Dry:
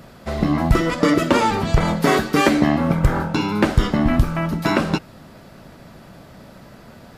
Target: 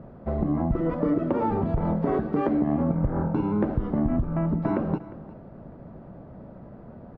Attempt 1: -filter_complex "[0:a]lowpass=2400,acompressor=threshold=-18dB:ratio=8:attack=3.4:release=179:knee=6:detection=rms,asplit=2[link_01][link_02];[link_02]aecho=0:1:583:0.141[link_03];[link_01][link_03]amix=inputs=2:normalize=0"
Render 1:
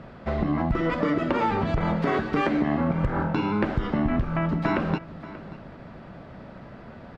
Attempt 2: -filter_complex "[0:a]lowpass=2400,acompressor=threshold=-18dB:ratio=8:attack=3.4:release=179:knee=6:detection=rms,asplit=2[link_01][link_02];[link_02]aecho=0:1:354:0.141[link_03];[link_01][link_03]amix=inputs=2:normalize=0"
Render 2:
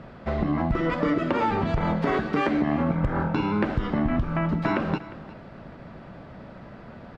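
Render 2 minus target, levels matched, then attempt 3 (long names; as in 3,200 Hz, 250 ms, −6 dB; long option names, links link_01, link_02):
2,000 Hz band +12.5 dB
-filter_complex "[0:a]lowpass=740,acompressor=threshold=-18dB:ratio=8:attack=3.4:release=179:knee=6:detection=rms,asplit=2[link_01][link_02];[link_02]aecho=0:1:354:0.141[link_03];[link_01][link_03]amix=inputs=2:normalize=0"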